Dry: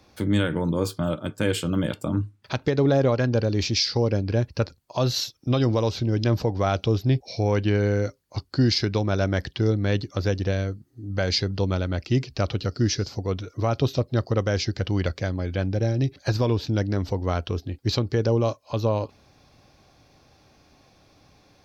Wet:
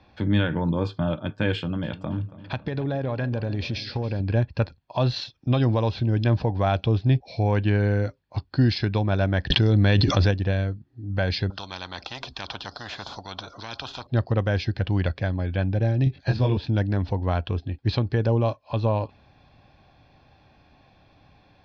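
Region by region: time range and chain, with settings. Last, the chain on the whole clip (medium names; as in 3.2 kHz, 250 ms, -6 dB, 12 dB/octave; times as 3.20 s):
1.55–4.20 s: compression 4:1, threshold -24 dBFS + filtered feedback delay 278 ms, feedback 54%, low-pass 4 kHz, level -16 dB
9.50–10.31 s: treble shelf 4.2 kHz +9.5 dB + level flattener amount 100%
11.50–14.07 s: high-order bell 2.2 kHz -15.5 dB 1 oct + spectrum-flattening compressor 10:1
16.04–16.57 s: peaking EQ 1.1 kHz -5.5 dB 2.1 oct + doubling 23 ms -2.5 dB
whole clip: low-pass 3.8 kHz 24 dB/octave; comb 1.2 ms, depth 34%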